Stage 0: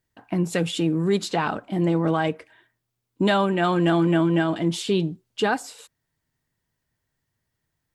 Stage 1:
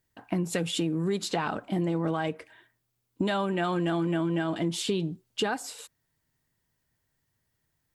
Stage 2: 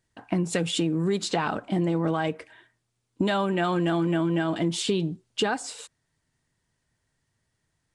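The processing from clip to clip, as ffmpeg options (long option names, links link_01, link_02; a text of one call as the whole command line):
ffmpeg -i in.wav -af "highshelf=frequency=8200:gain=4.5,acompressor=threshold=-25dB:ratio=5" out.wav
ffmpeg -i in.wav -af "aresample=22050,aresample=44100,volume=3dB" out.wav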